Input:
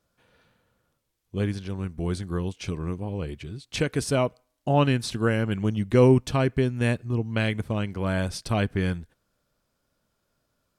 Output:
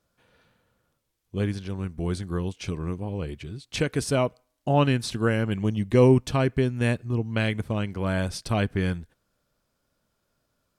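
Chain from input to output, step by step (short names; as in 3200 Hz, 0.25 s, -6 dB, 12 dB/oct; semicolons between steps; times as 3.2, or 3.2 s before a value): 5.5–6.12 notch 1400 Hz, Q 5.4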